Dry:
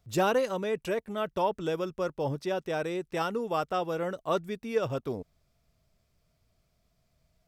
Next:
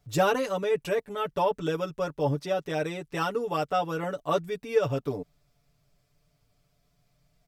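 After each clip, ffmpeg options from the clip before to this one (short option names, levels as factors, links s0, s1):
-af "aecho=1:1:6.9:0.9"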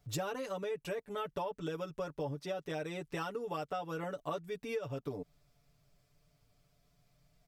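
-af "acompressor=threshold=0.02:ratio=6,volume=0.841"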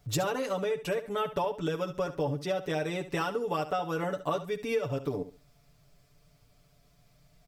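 -af "aecho=1:1:70|140|210:0.224|0.0537|0.0129,volume=2.37"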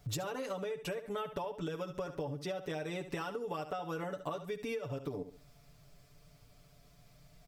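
-af "acompressor=threshold=0.0126:ratio=6,volume=1.26"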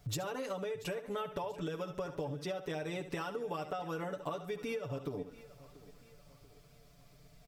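-af "aecho=1:1:685|1370|2055|2740:0.119|0.0535|0.0241|0.0108"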